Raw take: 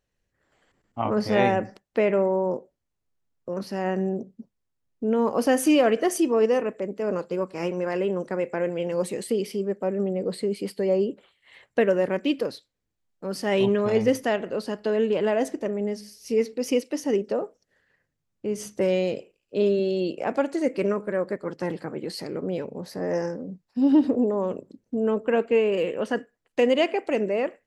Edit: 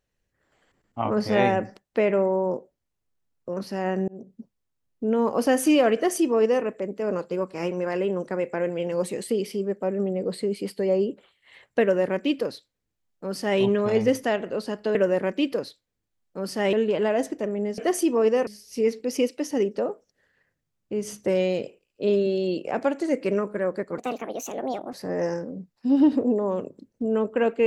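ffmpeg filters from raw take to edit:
ffmpeg -i in.wav -filter_complex "[0:a]asplit=8[link_01][link_02][link_03][link_04][link_05][link_06][link_07][link_08];[link_01]atrim=end=4.08,asetpts=PTS-STARTPTS,afade=type=out:start_time=4.076:duration=0.004:curve=hsin[link_09];[link_02]atrim=start=4.08:end=14.952,asetpts=PTS-STARTPTS,afade=type=in:duration=0.27[link_10];[link_03]atrim=start=11.818:end=13.602[link_11];[link_04]atrim=start=14.948:end=16.002[link_12];[link_05]atrim=start=5.948:end=6.642[link_13];[link_06]atrim=start=15.998:end=21.514[link_14];[link_07]atrim=start=21.51:end=22.85,asetpts=PTS-STARTPTS,asetrate=62181,aresample=44100[link_15];[link_08]atrim=start=22.846[link_16];[link_09][link_10]concat=n=2:v=0:a=1[link_17];[link_17][link_11]acrossfade=duration=0.004:curve1=hsin:curve2=hsin[link_18];[link_18][link_12]acrossfade=duration=0.004:curve1=hsin:curve2=hsin[link_19];[link_19][link_13]acrossfade=duration=0.004:curve1=hsin:curve2=hsin[link_20];[link_20][link_14]acrossfade=duration=0.004:curve1=hsin:curve2=hsin[link_21];[link_21][link_15]acrossfade=duration=0.004:curve1=hsin:curve2=hsin[link_22];[link_22][link_16]acrossfade=duration=0.004:curve1=hsin:curve2=hsin" out.wav

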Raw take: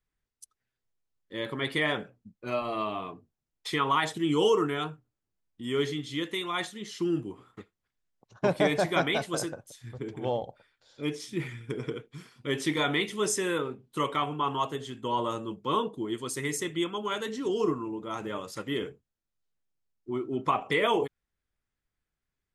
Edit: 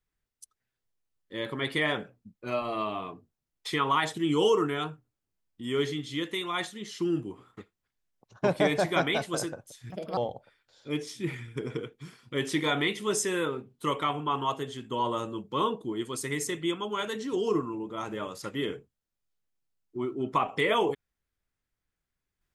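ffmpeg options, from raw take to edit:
ffmpeg -i in.wav -filter_complex "[0:a]asplit=3[link_01][link_02][link_03];[link_01]atrim=end=9.904[link_04];[link_02]atrim=start=9.9:end=10.3,asetpts=PTS-STARTPTS,asetrate=64827,aresample=44100[link_05];[link_03]atrim=start=10.296[link_06];[link_04][link_05]acrossfade=duration=0.004:curve1=hsin:curve2=hsin[link_07];[link_07][link_06]acrossfade=duration=0.004:curve1=hsin:curve2=hsin" out.wav

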